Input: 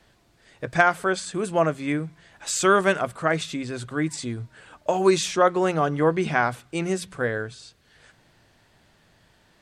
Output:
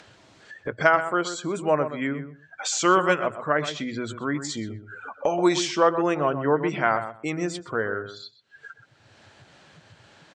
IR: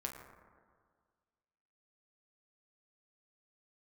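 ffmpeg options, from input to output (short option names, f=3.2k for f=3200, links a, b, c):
-filter_complex "[0:a]highpass=84,afftdn=nr=28:nf=-43,lowpass=f=8.5k:w=0.5412,lowpass=f=8.5k:w=1.3066,lowshelf=f=180:g=-10,acompressor=mode=upward:threshold=-25dB:ratio=2.5,asetrate=41013,aresample=44100,asplit=2[a][b];[b]adelay=126,lowpass=f=1.9k:p=1,volume=-10dB,asplit=2[c][d];[d]adelay=126,lowpass=f=1.9k:p=1,volume=0.17[e];[a][c][e]amix=inputs=3:normalize=0"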